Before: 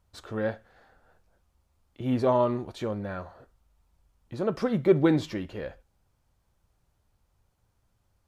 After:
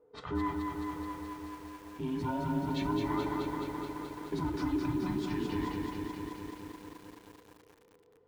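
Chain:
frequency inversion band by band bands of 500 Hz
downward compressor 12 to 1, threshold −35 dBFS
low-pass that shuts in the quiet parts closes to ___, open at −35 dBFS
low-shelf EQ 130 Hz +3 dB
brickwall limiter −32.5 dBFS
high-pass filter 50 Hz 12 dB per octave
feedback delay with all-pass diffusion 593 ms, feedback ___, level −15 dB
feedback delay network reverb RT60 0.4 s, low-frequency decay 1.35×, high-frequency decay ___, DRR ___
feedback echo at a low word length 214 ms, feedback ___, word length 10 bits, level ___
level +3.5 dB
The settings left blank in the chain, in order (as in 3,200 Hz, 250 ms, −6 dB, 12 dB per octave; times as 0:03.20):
1,100 Hz, 44%, 0.7×, 6 dB, 80%, −3.5 dB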